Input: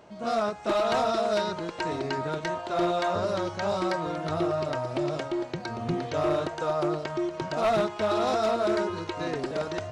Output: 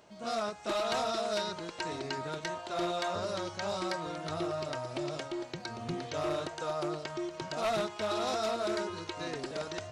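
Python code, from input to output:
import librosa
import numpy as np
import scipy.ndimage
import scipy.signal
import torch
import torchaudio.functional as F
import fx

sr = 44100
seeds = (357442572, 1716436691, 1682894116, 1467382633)

y = fx.high_shelf(x, sr, hz=2600.0, db=10.0)
y = y * librosa.db_to_amplitude(-8.0)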